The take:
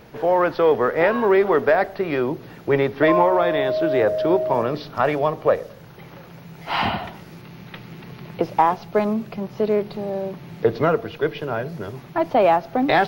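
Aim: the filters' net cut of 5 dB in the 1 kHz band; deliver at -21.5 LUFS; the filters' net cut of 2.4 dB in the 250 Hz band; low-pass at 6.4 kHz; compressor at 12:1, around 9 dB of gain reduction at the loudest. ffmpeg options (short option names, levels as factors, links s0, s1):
-af "lowpass=6400,equalizer=f=250:t=o:g=-3,equalizer=f=1000:t=o:g=-6.5,acompressor=threshold=0.0708:ratio=12,volume=2.51"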